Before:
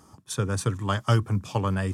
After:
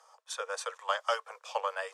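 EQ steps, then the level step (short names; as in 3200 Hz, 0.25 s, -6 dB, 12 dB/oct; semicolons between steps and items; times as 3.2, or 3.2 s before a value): steep high-pass 480 Hz 96 dB/oct; air absorption 50 m; bell 10000 Hz -3 dB 0.22 oct; -1.5 dB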